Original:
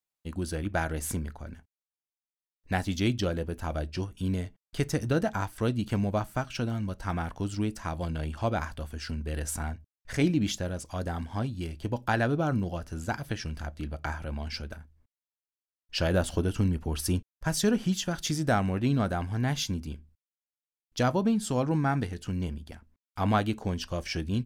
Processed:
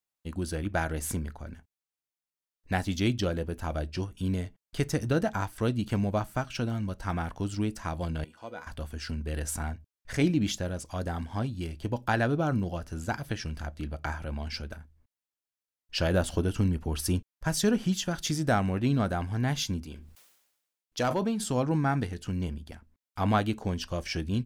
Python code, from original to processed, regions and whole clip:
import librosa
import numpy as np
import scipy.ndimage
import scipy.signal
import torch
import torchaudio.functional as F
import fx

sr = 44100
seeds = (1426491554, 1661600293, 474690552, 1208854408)

y = fx.chain(x, sr, fx.highpass(hz=210.0, slope=12),
    fx.comb_fb(f0_hz=490.0, decay_s=0.19, harmonics='all', damping=0.0, mix_pct=80), at=(8.24, 8.67))
y = fx.chain(y, sr, fx.bass_treble(bass_db=-8, treble_db=0),
    fx.overload_stage(gain_db=20.5),
    fx.sustainer(db_per_s=58.0), at=(19.84, 21.44))